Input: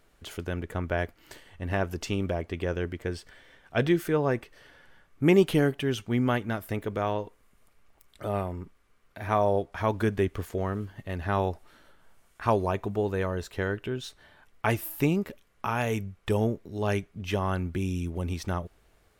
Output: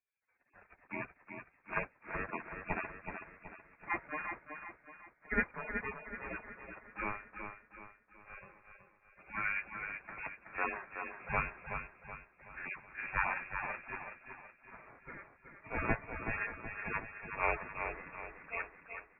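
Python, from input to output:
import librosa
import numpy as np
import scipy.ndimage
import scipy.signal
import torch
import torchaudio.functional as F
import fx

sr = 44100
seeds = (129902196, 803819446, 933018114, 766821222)

p1 = fx.hpss_only(x, sr, part='harmonic')
p2 = scipy.signal.sosfilt(scipy.signal.butter(2, 680.0, 'highpass', fs=sr, output='sos'), p1)
p3 = fx.spec_gate(p2, sr, threshold_db=-20, keep='weak')
p4 = fx.env_lowpass(p3, sr, base_hz=1200.0, full_db=-47.5)
p5 = fx.rider(p4, sr, range_db=10, speed_s=2.0)
p6 = fx.tremolo_shape(p5, sr, shape='triangle', hz=1.9, depth_pct=60)
p7 = p6 + fx.echo_feedback(p6, sr, ms=375, feedback_pct=54, wet_db=-5.0, dry=0)
p8 = fx.freq_invert(p7, sr, carrier_hz=2600)
p9 = fx.band_widen(p8, sr, depth_pct=40)
y = p9 * librosa.db_to_amplitude(16.0)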